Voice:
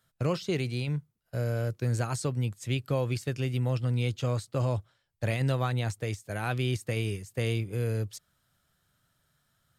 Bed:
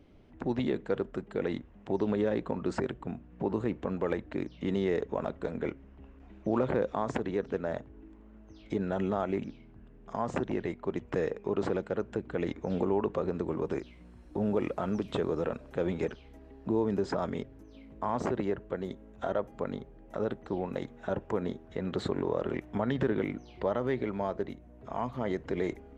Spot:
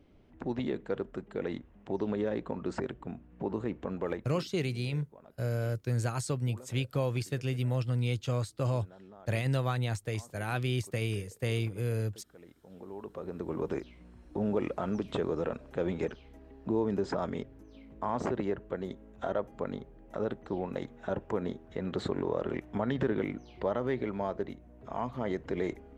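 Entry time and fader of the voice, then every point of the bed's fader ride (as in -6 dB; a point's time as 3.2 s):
4.05 s, -2.0 dB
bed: 4.12 s -3 dB
4.56 s -22 dB
12.63 s -22 dB
13.58 s -1 dB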